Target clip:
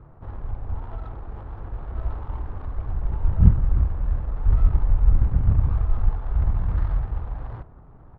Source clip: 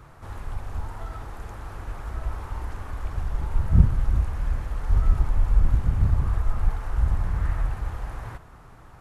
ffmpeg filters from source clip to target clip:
ffmpeg -i in.wav -af "adynamicsmooth=sensitivity=2.5:basefreq=720,atempo=1.1,volume=2dB" out.wav

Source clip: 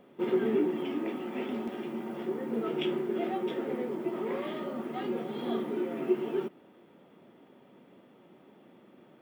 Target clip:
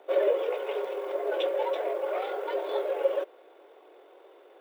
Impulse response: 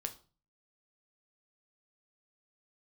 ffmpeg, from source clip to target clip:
-af "afreqshift=180,atempo=2,volume=3.5dB"

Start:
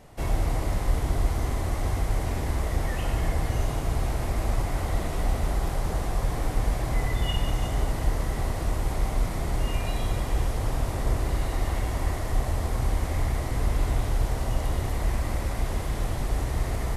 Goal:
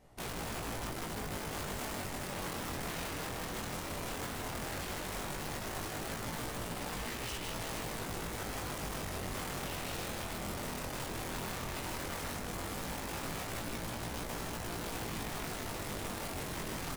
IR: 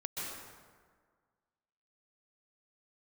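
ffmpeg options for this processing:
-af "acompressor=threshold=-23dB:ratio=8,aeval=exprs='(mod(22.4*val(0)+1,2)-1)/22.4':channel_layout=same,aeval=exprs='0.0447*(cos(1*acos(clip(val(0)/0.0447,-1,1)))-cos(1*PI/2))+0.00794*(cos(3*acos(clip(val(0)/0.0447,-1,1)))-cos(3*PI/2))+0.000631*(cos(7*acos(clip(val(0)/0.0447,-1,1)))-cos(7*PI/2))':channel_layout=same,asoftclip=type=hard:threshold=-35dB,aecho=1:1:156:0.501,flanger=delay=17:depth=7.2:speed=0.14"

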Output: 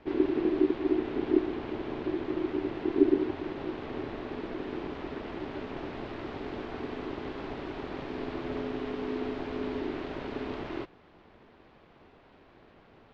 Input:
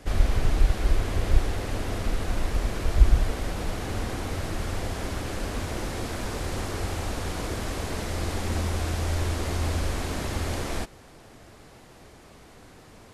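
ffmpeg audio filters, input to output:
ffmpeg -i in.wav -af "aeval=exprs='val(0)*sin(2*PI*340*n/s)':channel_layout=same,lowpass=frequency=3600:width=0.5412,lowpass=frequency=3600:width=1.3066,volume=-4.5dB" out.wav

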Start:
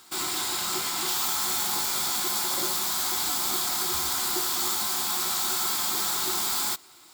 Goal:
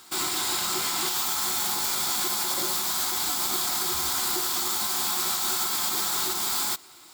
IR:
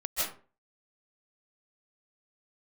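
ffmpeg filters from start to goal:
-af "alimiter=limit=-19dB:level=0:latency=1:release=81,volume=2.5dB"

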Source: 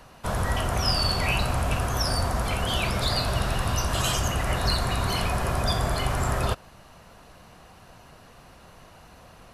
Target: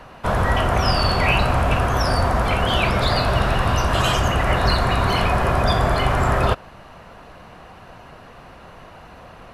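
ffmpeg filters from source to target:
ffmpeg -i in.wav -af "bass=frequency=250:gain=-3,treble=frequency=4000:gain=-13,volume=9dB" out.wav

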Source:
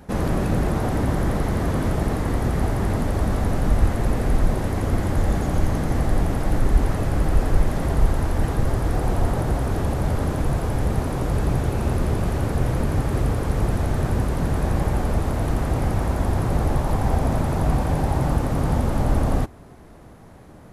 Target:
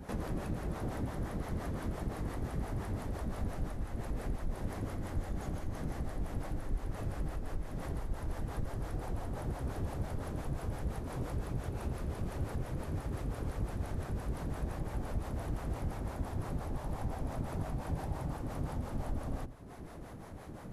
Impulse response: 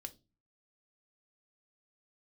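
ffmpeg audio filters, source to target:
-filter_complex "[0:a]acompressor=threshold=-35dB:ratio=4,asplit=2[link_01][link_02];[1:a]atrim=start_sample=2205,adelay=82[link_03];[link_02][link_03]afir=irnorm=-1:irlink=0,volume=-7dB[link_04];[link_01][link_04]amix=inputs=2:normalize=0,acrossover=split=450[link_05][link_06];[link_05]aeval=exprs='val(0)*(1-0.7/2+0.7/2*cos(2*PI*5.8*n/s))':channel_layout=same[link_07];[link_06]aeval=exprs='val(0)*(1-0.7/2-0.7/2*cos(2*PI*5.8*n/s))':channel_layout=same[link_08];[link_07][link_08]amix=inputs=2:normalize=0,volume=1dB"

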